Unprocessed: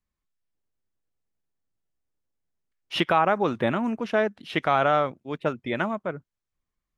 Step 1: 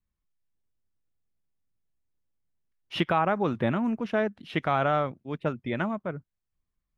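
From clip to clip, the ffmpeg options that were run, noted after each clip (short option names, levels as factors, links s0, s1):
-af "bass=f=250:g=7,treble=f=4000:g=-4,volume=0.631"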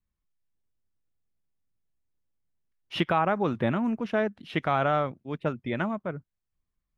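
-af anull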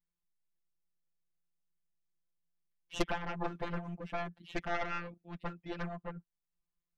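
-af "afftfilt=real='hypot(re,im)*cos(PI*b)':imag='0':win_size=1024:overlap=0.75,aeval=exprs='0.299*(cos(1*acos(clip(val(0)/0.299,-1,1)))-cos(1*PI/2))+0.106*(cos(4*acos(clip(val(0)/0.299,-1,1)))-cos(4*PI/2))+0.0168*(cos(8*acos(clip(val(0)/0.299,-1,1)))-cos(8*PI/2))':c=same,volume=0.596"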